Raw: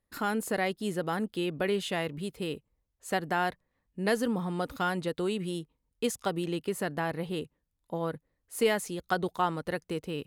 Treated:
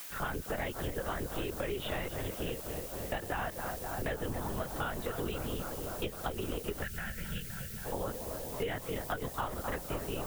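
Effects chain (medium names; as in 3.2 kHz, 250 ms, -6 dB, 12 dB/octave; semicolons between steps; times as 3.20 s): bass shelf 280 Hz -5.5 dB; on a send: tape echo 263 ms, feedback 90%, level -10.5 dB, low-pass 2.6 kHz; on the sum: LPC vocoder at 8 kHz whisper; added noise blue -46 dBFS; compression 5:1, threshold -32 dBFS, peak gain reduction 9.5 dB; time-frequency box 6.83–7.85 s, 220–1300 Hz -16 dB; three bands compressed up and down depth 40%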